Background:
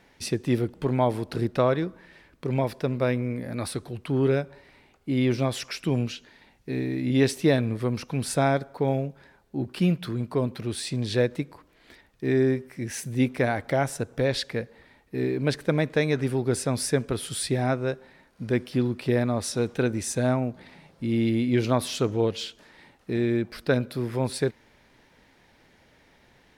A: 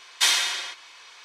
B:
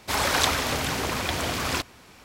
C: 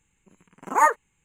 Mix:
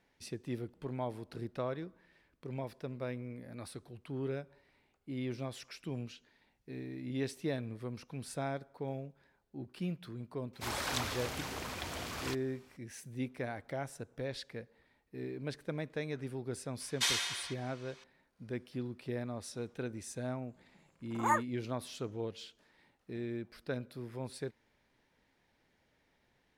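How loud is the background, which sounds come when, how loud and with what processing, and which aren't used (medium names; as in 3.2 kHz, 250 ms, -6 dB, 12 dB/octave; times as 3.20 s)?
background -15 dB
10.53 s: add B -13.5 dB
16.80 s: add A -11 dB
20.48 s: add C -12 dB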